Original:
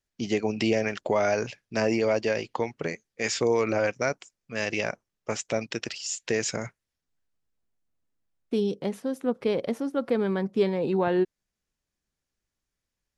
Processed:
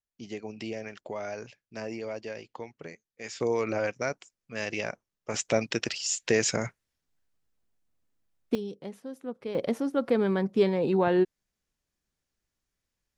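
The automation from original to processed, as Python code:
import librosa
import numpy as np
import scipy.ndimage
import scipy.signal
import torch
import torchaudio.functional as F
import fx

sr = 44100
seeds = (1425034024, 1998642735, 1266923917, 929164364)

y = fx.gain(x, sr, db=fx.steps((0.0, -12.0), (3.4, -4.0), (5.34, 2.5), (8.55, -10.0), (9.55, 0.5)))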